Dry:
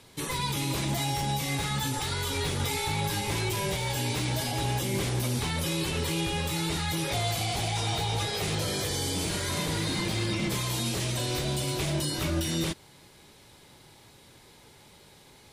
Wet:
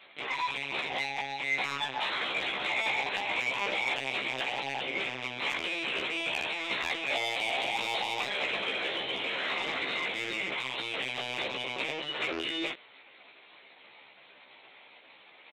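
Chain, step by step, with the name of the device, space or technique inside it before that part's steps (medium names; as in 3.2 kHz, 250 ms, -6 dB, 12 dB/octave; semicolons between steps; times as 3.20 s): talking toy (LPC vocoder at 8 kHz pitch kept; high-pass 500 Hz 12 dB/octave; peaking EQ 2.4 kHz +8.5 dB 0.5 oct; saturation -23 dBFS, distortion -15 dB); doubling 15 ms -2.5 dB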